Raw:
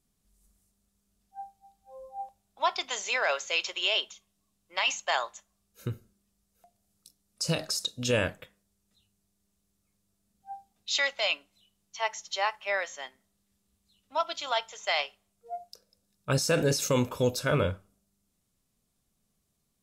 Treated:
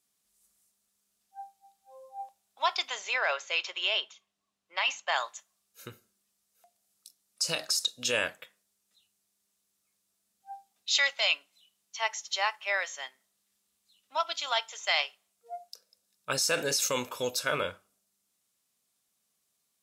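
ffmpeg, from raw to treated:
-filter_complex "[0:a]asettb=1/sr,asplit=3[a][b][c];[a]atrim=end=2.904[d];[b]atrim=start=2.9:end=5.16,asetpts=PTS-STARTPTS,afade=t=in:d=0.004:c=qsin,afade=t=out:st=2.256:d=0.004:c=qsin,aemphasis=mode=reproduction:type=75fm[e];[c]atrim=start=5.156[f];[d][e]acrossfade=d=0.004:c1=hsin:c2=qsin[g];[g][f]acrossfade=d=0.004:c1=qsin:c2=hsin,highpass=f=1.2k:p=1,volume=3dB"

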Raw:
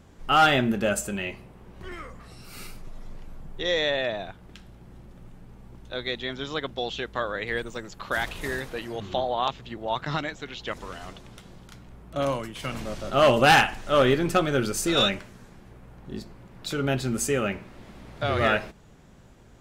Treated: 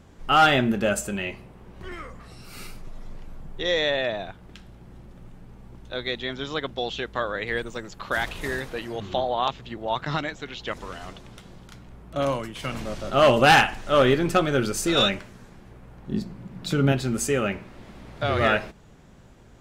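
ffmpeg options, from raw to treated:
-filter_complex "[0:a]asettb=1/sr,asplit=3[a][b][c];[a]atrim=end=16.094[d];[b]atrim=start=16.09:end=16.92,asetpts=PTS-STARTPTS,afade=t=in:d=0.004:c=qsin,afade=t=out:st=0.826:d=0.004:c=qsin,equalizer=f=180:w=1.3:g=11[e];[c]atrim=start=16.916[f];[d][e]acrossfade=d=0.004:c1=hsin:c2=qsin[g];[g][f]acrossfade=d=0.004:c1=qsin:c2=hsin,highshelf=f=9k:g=-3.5,volume=1.5dB"

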